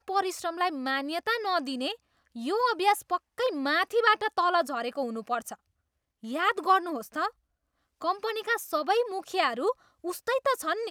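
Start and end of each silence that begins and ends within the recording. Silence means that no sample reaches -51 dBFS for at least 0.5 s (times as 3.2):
5.55–6.23
7.31–8.01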